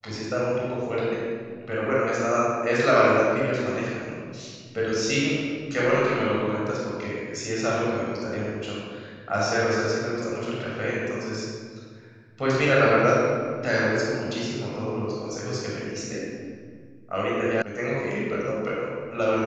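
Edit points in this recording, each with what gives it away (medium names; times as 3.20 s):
17.62 s: sound stops dead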